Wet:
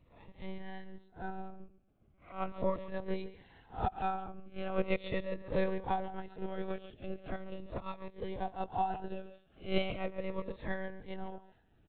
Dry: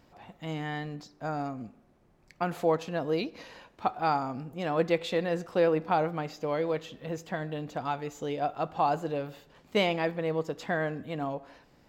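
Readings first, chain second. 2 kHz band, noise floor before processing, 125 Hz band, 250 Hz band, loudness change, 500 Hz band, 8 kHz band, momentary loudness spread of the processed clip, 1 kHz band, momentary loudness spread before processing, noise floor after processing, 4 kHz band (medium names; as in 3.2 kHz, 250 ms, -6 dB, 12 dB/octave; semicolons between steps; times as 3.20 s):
-8.5 dB, -63 dBFS, -7.5 dB, -7.0 dB, -8.0 dB, -9.0 dB, no reading, 15 LU, -7.0 dB, 11 LU, -67 dBFS, -9.0 dB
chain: reverse spectral sustain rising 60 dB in 0.35 s; transient shaper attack +7 dB, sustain -5 dB; bass shelf 120 Hz +9.5 dB; speakerphone echo 140 ms, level -12 dB; monotone LPC vocoder at 8 kHz 190 Hz; Shepard-style phaser falling 0.39 Hz; trim -9 dB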